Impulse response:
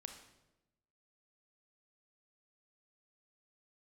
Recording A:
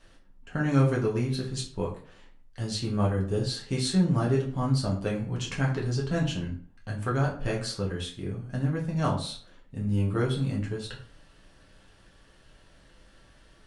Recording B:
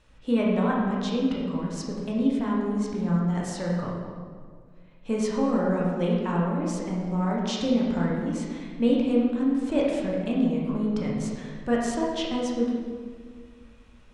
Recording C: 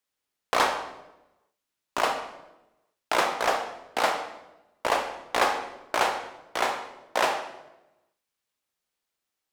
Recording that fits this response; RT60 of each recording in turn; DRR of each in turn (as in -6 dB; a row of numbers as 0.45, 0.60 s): C; 0.45, 1.8, 0.95 s; -3.5, -4.0, 5.0 dB